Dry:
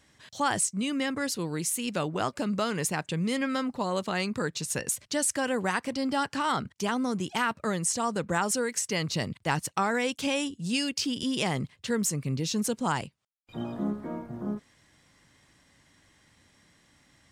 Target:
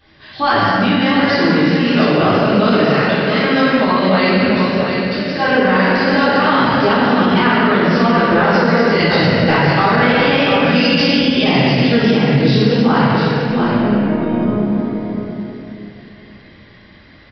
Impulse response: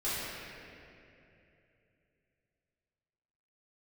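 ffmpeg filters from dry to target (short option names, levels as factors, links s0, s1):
-filter_complex "[0:a]asettb=1/sr,asplit=3[s0][s1][s2];[s0]atrim=end=2.854[s3];[s1]atrim=start=2.85:end=3.33,asetpts=PTS-STARTPTS,afade=t=in:d=0.004:c=qsin,afade=t=out:st=0.476:d=0.004:c=qsin,highpass=1000[s4];[s2]atrim=start=3.326[s5];[s3][s4]acrossfade=d=0.004:c1=hsin:c2=qsin[s6];[s6][s5]acrossfade=d=0.004:c1=qsin:c2=hsin,asettb=1/sr,asplit=3[s7][s8][s9];[s7]atrim=end=4.364[s10];[s8]atrim=start=4.36:end=5.25,asetpts=PTS-STARTPTS,afade=t=in:d=0.004:c=qsin,afade=t=out:st=0.886:d=0.004:c=qsin,acompressor=threshold=0.0158:ratio=6[s11];[s9]atrim=start=5.246[s12];[s10][s11]acrossfade=d=0.004:c1=hsin:c2=qsin[s13];[s13][s12]acrossfade=d=0.004:c1=qsin:c2=hsin,aecho=1:1:693:0.422[s14];[1:a]atrim=start_sample=2205[s15];[s14][s15]afir=irnorm=-1:irlink=0,aresample=11025,aresample=44100,alimiter=level_in=4.22:limit=0.891:release=50:level=0:latency=1,volume=0.75"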